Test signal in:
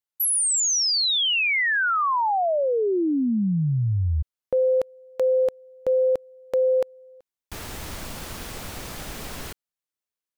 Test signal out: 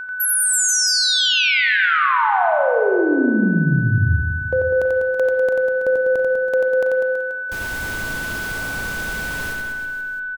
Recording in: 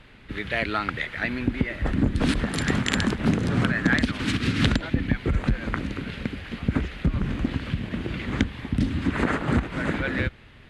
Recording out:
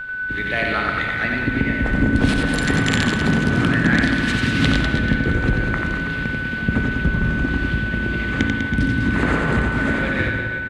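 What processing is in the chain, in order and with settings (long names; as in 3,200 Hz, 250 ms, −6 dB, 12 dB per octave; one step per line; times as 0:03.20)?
steady tone 1,500 Hz −29 dBFS
reverse bouncing-ball delay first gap 90 ms, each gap 1.2×, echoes 5
spring reverb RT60 1.9 s, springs 36/58 ms, chirp 25 ms, DRR 6 dB
level +2 dB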